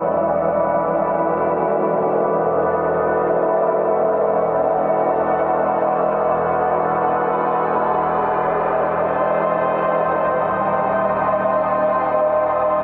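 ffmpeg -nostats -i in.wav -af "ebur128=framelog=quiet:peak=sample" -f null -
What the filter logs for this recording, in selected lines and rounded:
Integrated loudness:
  I:         -18.3 LUFS
  Threshold: -28.3 LUFS
Loudness range:
  LRA:         0.6 LU
  Threshold: -38.3 LUFS
  LRA low:   -18.6 LUFS
  LRA high:  -18.0 LUFS
Sample peak:
  Peak:       -4.8 dBFS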